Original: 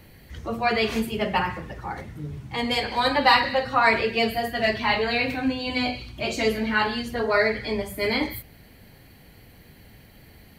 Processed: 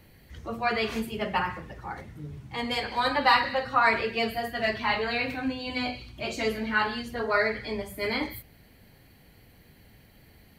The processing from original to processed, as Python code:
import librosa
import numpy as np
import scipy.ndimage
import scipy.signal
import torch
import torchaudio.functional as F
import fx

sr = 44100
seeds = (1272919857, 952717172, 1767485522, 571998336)

y = fx.dynamic_eq(x, sr, hz=1300.0, q=1.6, threshold_db=-36.0, ratio=4.0, max_db=5)
y = F.gain(torch.from_numpy(y), -5.5).numpy()